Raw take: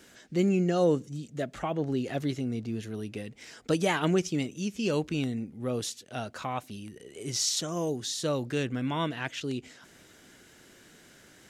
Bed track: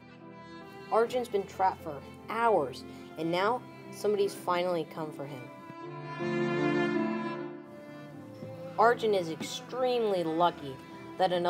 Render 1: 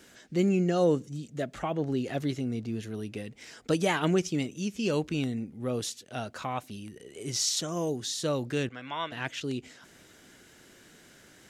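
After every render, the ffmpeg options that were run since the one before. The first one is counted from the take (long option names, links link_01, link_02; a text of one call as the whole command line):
ffmpeg -i in.wav -filter_complex "[0:a]asettb=1/sr,asplit=3[link_01][link_02][link_03];[link_01]atrim=end=8.694[link_04];[link_02]atrim=start=8.69:end=9.12,asetpts=PTS-STARTPTS,afade=type=in:duration=0.004:curve=qsin,afade=type=out:start_time=0.426:duration=0.004:curve=qsin,acrossover=split=580 6000:gain=0.158 1 0.126[link_05][link_06][link_07];[link_05][link_06][link_07]amix=inputs=3:normalize=0[link_08];[link_03]atrim=start=9.116[link_09];[link_04][link_08]acrossfade=duration=0.004:curve1=hsin:curve2=qsin[link_10];[link_10][link_09]acrossfade=duration=0.004:curve1=qsin:curve2=hsin" out.wav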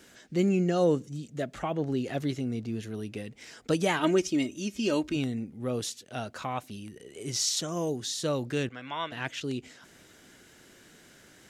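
ffmpeg -i in.wav -filter_complex "[0:a]asettb=1/sr,asplit=3[link_01][link_02][link_03];[link_01]atrim=end=3.994[link_04];[link_02]atrim=start=3.99:end=5.16,asetpts=PTS-STARTPTS,afade=type=in:duration=0.004:curve=qsin,afade=type=out:start_time=1.166:duration=0.004:curve=qsin,aecho=1:1:3.2:0.65,atrim=end_sample=51597[link_05];[link_03]atrim=start=5.156[link_06];[link_04][link_05]acrossfade=duration=0.004:curve1=hsin:curve2=qsin[link_07];[link_07][link_06]acrossfade=duration=0.004:curve1=qsin:curve2=hsin" out.wav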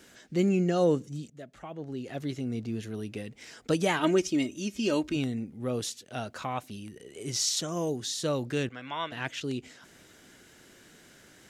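ffmpeg -i in.wav -filter_complex "[0:a]asplit=2[link_01][link_02];[link_01]atrim=end=1.3,asetpts=PTS-STARTPTS,afade=type=out:start_time=1.296:duration=0.004:curve=hsin:silence=0.237137[link_03];[link_02]atrim=start=1.3,asetpts=PTS-STARTPTS,afade=type=in:duration=1.28:curve=qua:silence=0.237137[link_04];[link_03][link_04]concat=n=2:v=0:a=1" out.wav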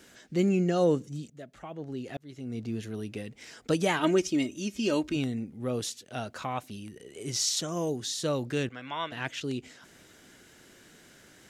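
ffmpeg -i in.wav -filter_complex "[0:a]asplit=2[link_01][link_02];[link_01]atrim=end=2.17,asetpts=PTS-STARTPTS,afade=type=out:start_time=2.166:duration=0.004:curve=hsin[link_03];[link_02]atrim=start=2.17,asetpts=PTS-STARTPTS,afade=type=in:duration=0.5[link_04];[link_03][link_04]concat=n=2:v=0:a=1" out.wav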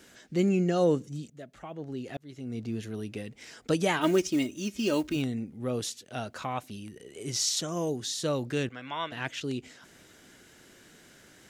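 ffmpeg -i in.wav -filter_complex "[0:a]asettb=1/sr,asplit=3[link_01][link_02][link_03];[link_01]atrim=end=4.014[link_04];[link_02]atrim=start=4.01:end=5.22,asetpts=PTS-STARTPTS,afade=type=in:duration=0.004:curve=qsin,afade=type=out:start_time=1.206:duration=0.004:curve=qsin,acrusher=bits=6:mode=log:mix=0:aa=0.000001[link_05];[link_03]atrim=start=5.216[link_06];[link_04][link_05]acrossfade=duration=0.004:curve1=hsin:curve2=qsin[link_07];[link_07][link_06]acrossfade=duration=0.004:curve1=qsin:curve2=hsin" out.wav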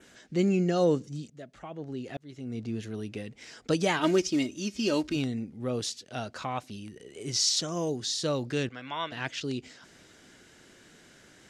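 ffmpeg -i in.wav -af "lowpass=8900,adynamicequalizer=threshold=0.00224:dfrequency=4800:dqfactor=2.6:tfrequency=4800:tqfactor=2.6:attack=5:release=100:ratio=0.375:range=3:mode=boostabove:tftype=bell" out.wav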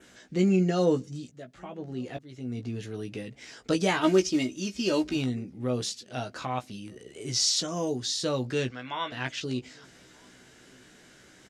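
ffmpeg -i in.wav -filter_complex "[0:a]asplit=2[link_01][link_02];[link_02]adelay=16,volume=-6dB[link_03];[link_01][link_03]amix=inputs=2:normalize=0,asplit=2[link_04][link_05];[link_05]adelay=1224,volume=-29dB,highshelf=frequency=4000:gain=-27.6[link_06];[link_04][link_06]amix=inputs=2:normalize=0" out.wav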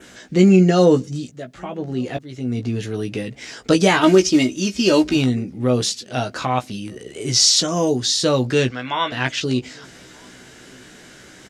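ffmpeg -i in.wav -af "volume=11dB,alimiter=limit=-3dB:level=0:latency=1" out.wav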